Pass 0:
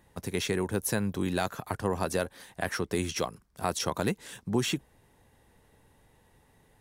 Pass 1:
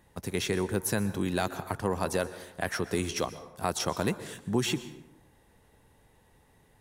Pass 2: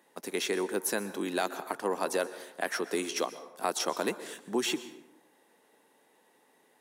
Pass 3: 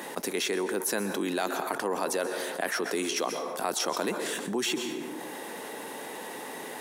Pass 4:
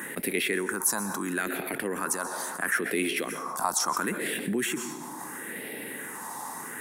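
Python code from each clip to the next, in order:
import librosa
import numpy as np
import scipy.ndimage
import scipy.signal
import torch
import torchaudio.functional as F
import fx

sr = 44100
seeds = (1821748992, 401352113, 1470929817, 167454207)

y1 = fx.rev_plate(x, sr, seeds[0], rt60_s=0.9, hf_ratio=0.55, predelay_ms=110, drr_db=13.5)
y2 = scipy.signal.sosfilt(scipy.signal.butter(4, 260.0, 'highpass', fs=sr, output='sos'), y1)
y3 = fx.env_flatten(y2, sr, amount_pct=70)
y3 = F.gain(torch.from_numpy(y3), -2.0).numpy()
y4 = fx.phaser_stages(y3, sr, stages=4, low_hz=430.0, high_hz=1000.0, hz=0.74, feedback_pct=45)
y4 = F.gain(torch.from_numpy(y4), 5.0).numpy()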